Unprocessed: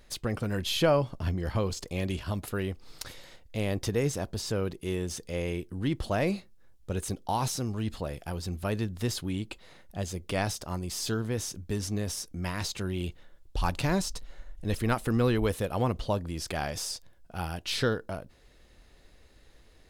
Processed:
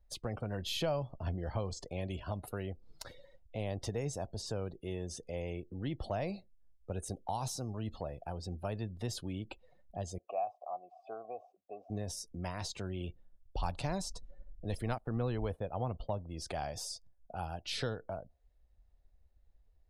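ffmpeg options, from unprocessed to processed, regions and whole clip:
-filter_complex "[0:a]asettb=1/sr,asplit=3[a][b][c];[a]atrim=end=10.184[d];[b]atrim=start=10.18:end=11.9,asetpts=PTS-STARTPTS,afade=t=in:d=0.004:c=qsin,afade=t=out:st=1.716:d=0.004:c=qsin,asplit=3[e][f][g];[e]bandpass=f=730:t=q:w=8,volume=0dB[h];[f]bandpass=f=1.09k:t=q:w=8,volume=-6dB[i];[g]bandpass=f=2.44k:t=q:w=8,volume=-9dB[j];[h][i][j]amix=inputs=3:normalize=0,equalizer=f=600:w=0.46:g=9.5[k];[c]atrim=start=11.896[l];[d][k]acrossfade=d=0.004:c1=hsin:c2=qsin[m];[m][l]acrossfade=d=0.004:c1=qsin:c2=hsin,asettb=1/sr,asplit=3[n][o][p];[n]atrim=end=14.984[q];[o]atrim=start=14.98:end=16.31,asetpts=PTS-STARTPTS,afade=t=in:d=0.004:c=qsin,afade=t=out:st=1.326:d=0.004:c=qsin,agate=range=-33dB:threshold=-35dB:ratio=3:release=100:detection=peak,highshelf=f=3.3k:g=-7.5[r];[p]atrim=start=16.306[s];[q][r]acrossfade=d=0.004:c1=hsin:c2=qsin[t];[t][s]acrossfade=d=0.004:c1=qsin:c2=hsin,afftdn=nr=24:nf=-46,equalizer=f=710:t=o:w=1.2:g=12.5,acrossover=split=170|3000[u][v][w];[v]acompressor=threshold=-37dB:ratio=2[x];[u][x][w]amix=inputs=3:normalize=0,volume=-6.5dB"

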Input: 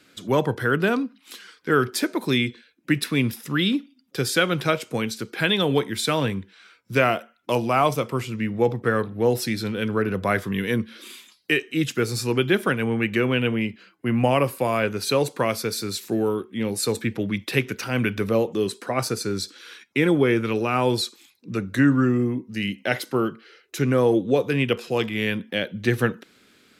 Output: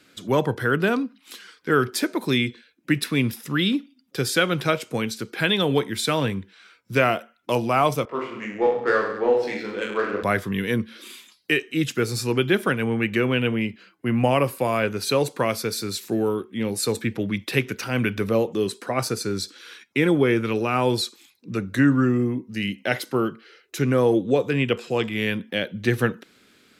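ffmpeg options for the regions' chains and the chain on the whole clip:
-filter_complex "[0:a]asettb=1/sr,asplit=3[a][b][c];[a]atrim=end=8.054[d];[b]atrim=start=8.05:end=10.23,asetpts=PTS-STARTPTS,afade=t=in:d=0.004:c=qsin,afade=t=out:st=2.176:d=0.004:c=qsin,highpass=420,adynamicsmooth=sensitivity=1:basefreq=1.6k,aecho=1:1:20|43|69.45|99.87|134.8|175.1|221.3|274.5:0.794|0.631|0.501|0.398|0.316|0.251|0.2|0.158,atrim=end_sample=96138[e];[c]atrim=start=10.226[f];[d][e]acrossfade=d=0.004:c1=hsin:c2=qsin[g];[g][f]acrossfade=d=0.004:c1=qsin:c2=hsin,asettb=1/sr,asplit=3[h][i][j];[h]atrim=end=24.304[k];[i]atrim=start=24.3:end=25.11,asetpts=PTS-STARTPTS,afade=t=in:d=0.004:c=qsin,afade=t=out:st=0.806:d=0.004:c=qsin,acrossover=split=4800[l][m];[m]acompressor=threshold=-53dB:ratio=4:attack=1:release=60[n];[l][n]amix=inputs=2:normalize=0,equalizer=f=7.6k:t=o:w=0.24:g=11[o];[j]atrim=start=25.106[p];[k][o]acrossfade=d=0.004:c1=hsin:c2=qsin[q];[q][p]acrossfade=d=0.004:c1=qsin:c2=hsin"

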